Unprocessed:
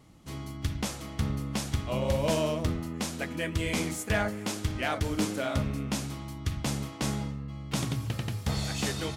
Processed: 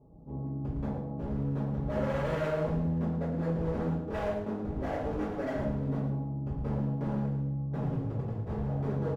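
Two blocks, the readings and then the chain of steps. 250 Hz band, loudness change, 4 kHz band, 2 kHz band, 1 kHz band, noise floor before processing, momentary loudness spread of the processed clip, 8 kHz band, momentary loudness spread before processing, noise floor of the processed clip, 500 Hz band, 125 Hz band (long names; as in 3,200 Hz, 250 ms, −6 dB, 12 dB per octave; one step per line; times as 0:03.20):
0.0 dB, −1.5 dB, −19.5 dB, −9.5 dB, −2.5 dB, −42 dBFS, 5 LU, below −25 dB, 7 LU, −39 dBFS, 0.0 dB, +0.5 dB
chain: Butterworth low-pass 820 Hz 36 dB per octave
hum removal 46.8 Hz, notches 40
hard clipping −33.5 dBFS, distortion −6 dB
single-tap delay 109 ms −9 dB
coupled-rooms reverb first 0.45 s, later 1.8 s, from −28 dB, DRR −9 dB
level −5 dB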